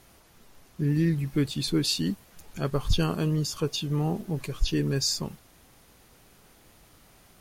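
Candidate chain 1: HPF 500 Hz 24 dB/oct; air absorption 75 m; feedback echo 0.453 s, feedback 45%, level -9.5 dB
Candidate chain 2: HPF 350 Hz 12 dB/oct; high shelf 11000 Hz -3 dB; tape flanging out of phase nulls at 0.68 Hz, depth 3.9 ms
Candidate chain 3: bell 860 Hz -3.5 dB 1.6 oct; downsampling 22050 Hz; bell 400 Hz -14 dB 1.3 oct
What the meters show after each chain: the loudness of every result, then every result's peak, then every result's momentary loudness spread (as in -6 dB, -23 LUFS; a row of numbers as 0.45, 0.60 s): -35.5, -35.0, -30.5 LUFS; -17.5, -17.5, -12.5 dBFS; 16, 11, 10 LU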